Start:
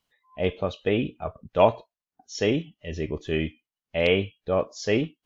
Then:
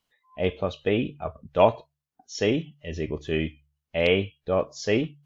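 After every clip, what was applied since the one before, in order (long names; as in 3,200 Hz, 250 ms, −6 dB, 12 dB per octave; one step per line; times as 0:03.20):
hum removal 72.14 Hz, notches 2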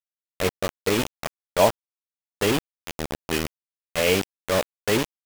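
bit reduction 4 bits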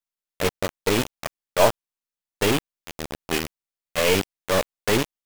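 gain on one half-wave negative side −7 dB
level +3.5 dB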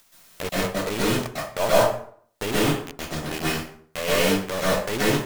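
upward compression, threshold −20 dBFS
dense smooth reverb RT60 0.55 s, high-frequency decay 0.7×, pre-delay 115 ms, DRR −8 dB
level −8 dB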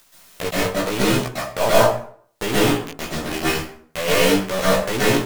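chorus effect 0.84 Hz, delay 15 ms, depth 2.9 ms
level +7 dB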